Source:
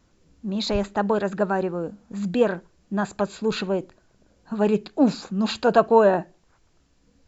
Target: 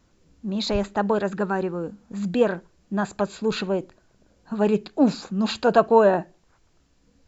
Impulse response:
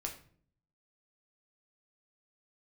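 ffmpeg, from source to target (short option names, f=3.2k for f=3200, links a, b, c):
-filter_complex "[0:a]asettb=1/sr,asplit=3[a][b][c];[a]atrim=end=1.324[d];[b]atrim=start=1.32:end=2.03,asetpts=PTS-STARTPTS,afade=t=in:d=0.004:c=qsin,afade=t=out:st=0.706:d=0.004:c=qsin,equalizer=f=640:t=o:w=0.3:g=-9.5[e];[c]atrim=start=2.026[f];[d][e]acrossfade=d=0.004:c1=hsin:c2=qsin[g];[g][f]acrossfade=d=0.004:c1=qsin:c2=hsin"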